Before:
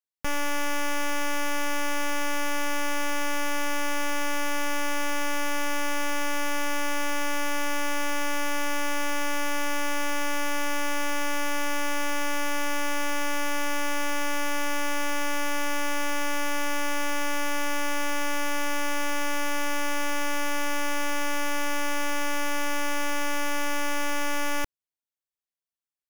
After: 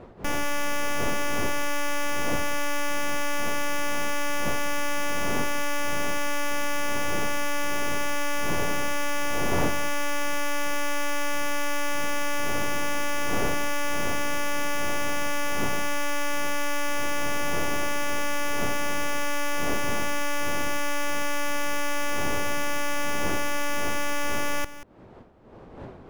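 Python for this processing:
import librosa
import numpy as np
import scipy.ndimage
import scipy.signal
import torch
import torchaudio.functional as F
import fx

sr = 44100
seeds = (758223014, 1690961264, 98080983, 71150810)

y = fx.dmg_wind(x, sr, seeds[0], corner_hz=530.0, level_db=-39.0)
y = y + 10.0 ** (-14.5 / 20.0) * np.pad(y, (int(185 * sr / 1000.0), 0))[:len(y)]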